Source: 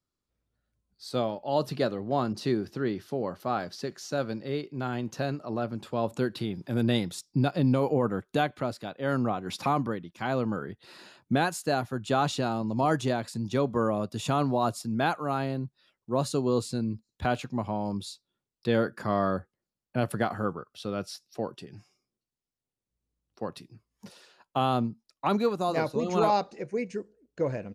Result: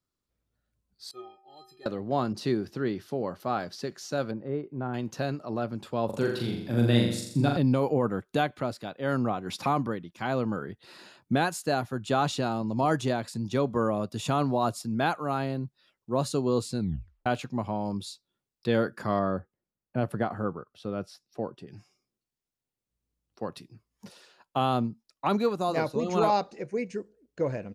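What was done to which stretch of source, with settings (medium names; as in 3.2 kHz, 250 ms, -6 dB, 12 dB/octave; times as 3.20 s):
1.11–1.86 s: inharmonic resonator 370 Hz, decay 0.42 s, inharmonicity 0.03
4.31–4.94 s: low-pass 1.2 kHz
6.05–7.57 s: flutter echo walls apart 7.2 m, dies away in 0.7 s
16.79 s: tape stop 0.47 s
19.19–21.68 s: treble shelf 2.1 kHz -11 dB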